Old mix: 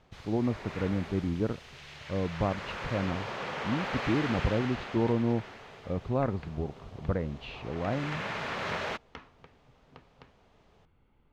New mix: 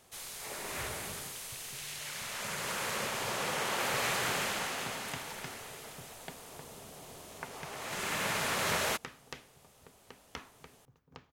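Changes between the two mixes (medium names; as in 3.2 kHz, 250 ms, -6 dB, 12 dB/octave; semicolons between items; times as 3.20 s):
speech: muted; second sound: entry +1.20 s; master: remove distance through air 220 m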